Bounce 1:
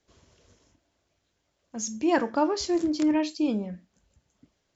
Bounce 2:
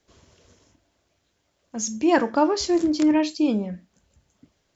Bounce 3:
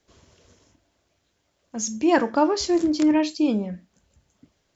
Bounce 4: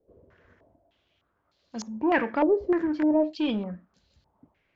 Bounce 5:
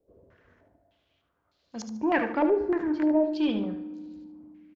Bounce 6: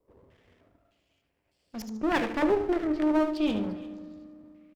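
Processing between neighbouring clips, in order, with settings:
de-hum 48.26 Hz, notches 3; gain +4.5 dB
nothing audible
in parallel at -3 dB: overloaded stage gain 23.5 dB; on the sum: stepped low-pass 3.3 Hz 500–4300 Hz; gain -8.5 dB
on a send: feedback echo 74 ms, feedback 25%, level -9 dB; on the sum: FDN reverb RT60 2 s, low-frequency decay 1.6×, high-frequency decay 0.55×, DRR 14.5 dB; gain -2 dB
minimum comb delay 0.38 ms; echo 0.347 s -20 dB

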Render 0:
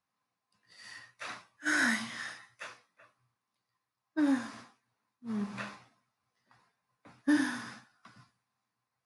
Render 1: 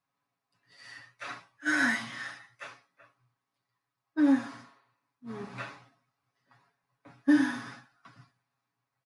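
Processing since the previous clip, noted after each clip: spectral repair 4.54–4.99, 310–4800 Hz both; high shelf 4800 Hz -8.5 dB; comb 7.2 ms, depth 87%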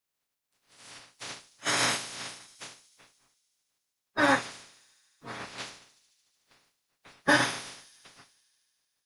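spectral limiter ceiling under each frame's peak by 28 dB; thin delay 74 ms, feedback 82%, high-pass 5200 Hz, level -16.5 dB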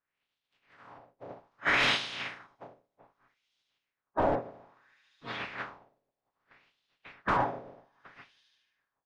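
wrapped overs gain 18.5 dB; LFO low-pass sine 0.62 Hz 580–3500 Hz

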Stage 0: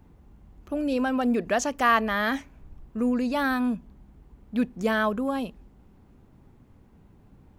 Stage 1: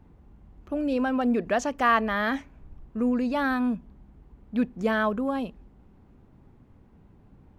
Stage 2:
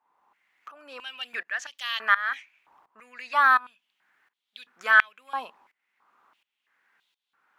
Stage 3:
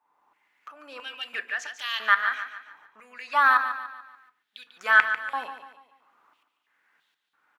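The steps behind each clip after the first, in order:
high shelf 4900 Hz -10.5 dB
tremolo saw up 1.4 Hz, depth 90%; stepped high-pass 3 Hz 980–3500 Hz; gain +4.5 dB
feedback echo 0.145 s, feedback 43%, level -10 dB; reverb RT60 0.40 s, pre-delay 3 ms, DRR 11 dB

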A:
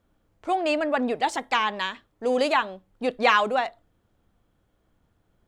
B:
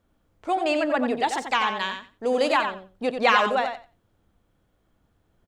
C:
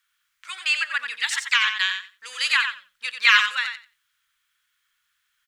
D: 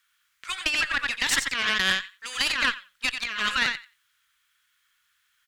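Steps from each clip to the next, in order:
feedback echo 90 ms, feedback 15%, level -7 dB
inverse Chebyshev high-pass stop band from 760 Hz, stop band 40 dB; gain +8.5 dB
negative-ratio compressor -25 dBFS, ratio -1; tube stage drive 16 dB, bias 0.8; gain +4.5 dB

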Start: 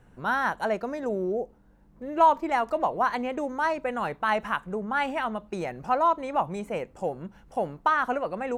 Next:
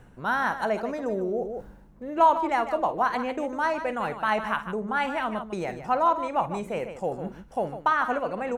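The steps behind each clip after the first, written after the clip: tapped delay 51/152 ms -14/-11 dB; reverse; upward compressor, threshold -27 dBFS; reverse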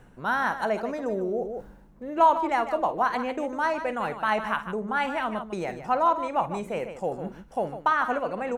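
bell 81 Hz -7.5 dB 0.77 oct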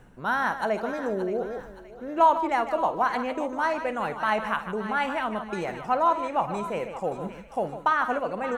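thinning echo 0.572 s, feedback 44%, high-pass 920 Hz, level -11 dB

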